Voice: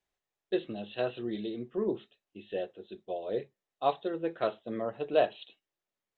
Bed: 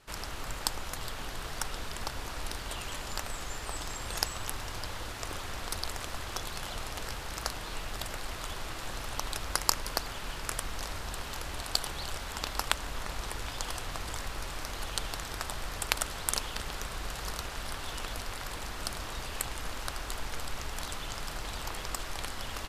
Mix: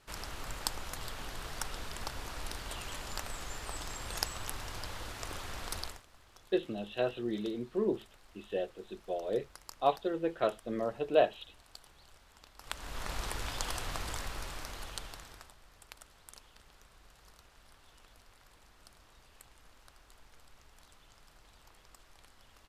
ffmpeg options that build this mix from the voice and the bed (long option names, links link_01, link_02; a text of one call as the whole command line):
ffmpeg -i stem1.wav -i stem2.wav -filter_complex "[0:a]adelay=6000,volume=0dB[link_01];[1:a]volume=18.5dB,afade=type=out:start_time=5.8:duration=0.22:silence=0.112202,afade=type=in:start_time=12.59:duration=0.55:silence=0.0794328,afade=type=out:start_time=13.96:duration=1.59:silence=0.0794328[link_02];[link_01][link_02]amix=inputs=2:normalize=0" out.wav